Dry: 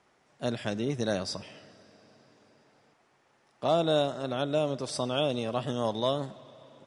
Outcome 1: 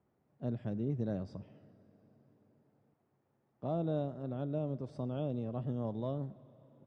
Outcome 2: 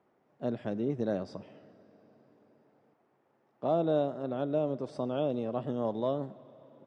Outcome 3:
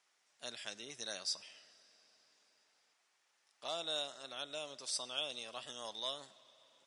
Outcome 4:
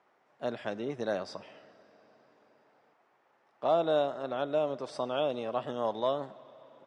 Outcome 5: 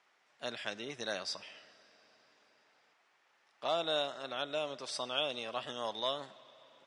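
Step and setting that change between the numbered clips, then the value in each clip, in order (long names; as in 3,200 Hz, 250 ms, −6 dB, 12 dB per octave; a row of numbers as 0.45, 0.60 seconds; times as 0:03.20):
resonant band-pass, frequency: 100, 310, 7,300, 850, 2,600 Hertz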